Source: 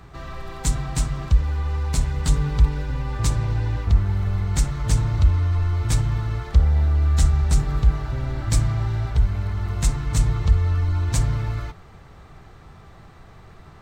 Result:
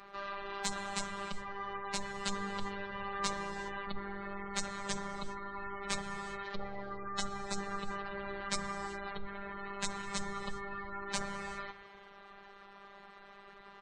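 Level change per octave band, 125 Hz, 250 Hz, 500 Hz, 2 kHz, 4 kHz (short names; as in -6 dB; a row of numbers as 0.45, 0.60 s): -31.5, -11.5, -5.5, -2.5, -5.0 dB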